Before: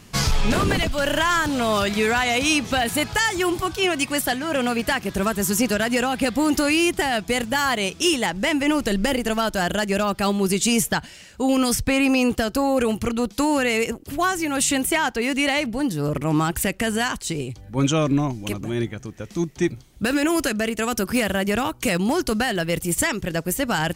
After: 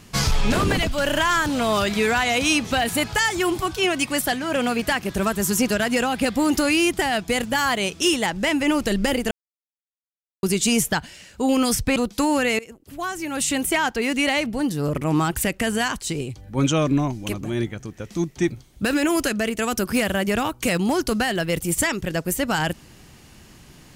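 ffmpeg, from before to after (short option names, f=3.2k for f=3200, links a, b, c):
-filter_complex "[0:a]asplit=5[a][b][c][d][e];[a]atrim=end=9.31,asetpts=PTS-STARTPTS,afade=t=out:st=9.306:d=0.004:c=hsin[f];[b]atrim=start=9.31:end=10.43,asetpts=PTS-STARTPTS,volume=0[g];[c]atrim=start=10.43:end=11.962,asetpts=PTS-STARTPTS,afade=t=in:d=0.004:c=hsin[h];[d]atrim=start=13.158:end=13.79,asetpts=PTS-STARTPTS,afade=t=out:st=0.628:d=0.004:c=hsin:silence=0.0944061[i];[e]atrim=start=13.79,asetpts=PTS-STARTPTS,afade=t=in:d=1.2:silence=0.0944061[j];[f][g][h]concat=n=3:v=0:a=1[k];[i][j]concat=n=2:v=0:a=1[l];[k][l]acrossfade=d=0.004:c1=hsin:c2=hsin"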